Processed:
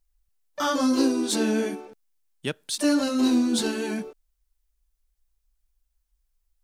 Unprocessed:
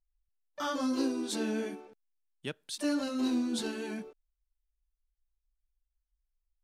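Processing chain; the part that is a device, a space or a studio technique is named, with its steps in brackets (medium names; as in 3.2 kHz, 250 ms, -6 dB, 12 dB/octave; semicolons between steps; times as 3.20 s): exciter from parts (in parallel at -6 dB: high-pass 4 kHz 12 dB/octave + saturation -38 dBFS, distortion -11 dB); on the sum: trim +9 dB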